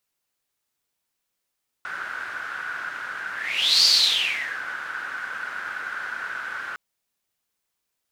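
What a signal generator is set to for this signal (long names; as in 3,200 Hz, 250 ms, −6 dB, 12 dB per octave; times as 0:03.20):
pass-by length 4.91 s, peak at 0:02.00, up 0.56 s, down 0.83 s, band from 1,500 Hz, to 4,600 Hz, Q 9.4, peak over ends 15.5 dB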